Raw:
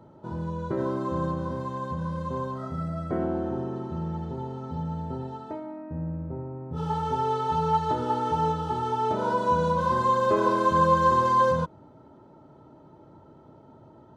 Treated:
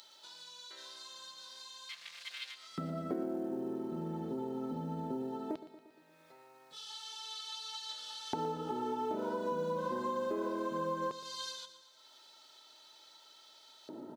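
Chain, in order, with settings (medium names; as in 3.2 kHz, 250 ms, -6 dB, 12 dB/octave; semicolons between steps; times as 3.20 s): 1.89–2.55 s: self-modulated delay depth 0.53 ms; LFO high-pass square 0.18 Hz 270–4000 Hz; upward compressor, threshold -44 dBFS; peaking EQ 1.1 kHz -5 dB 0.8 oct; compression 4:1, threshold -37 dBFS, peak gain reduction 17 dB; companded quantiser 8-bit; high-pass 76 Hz; feedback delay 117 ms, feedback 60%, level -14 dB; trim +1 dB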